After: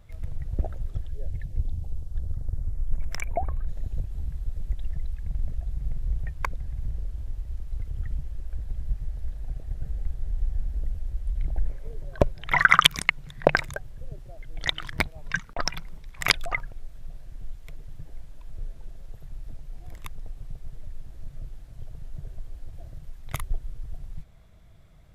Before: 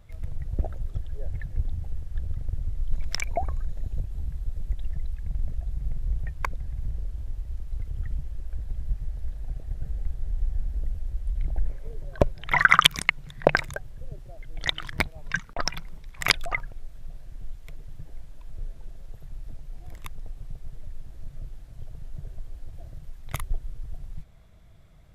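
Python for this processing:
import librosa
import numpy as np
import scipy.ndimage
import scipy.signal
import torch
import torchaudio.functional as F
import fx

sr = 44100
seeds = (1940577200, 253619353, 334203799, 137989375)

y = fx.peak_eq(x, sr, hz=fx.line((1.08, 1000.0), (3.66, 6200.0)), db=-14.0, octaves=0.98, at=(1.08, 3.66), fade=0.02)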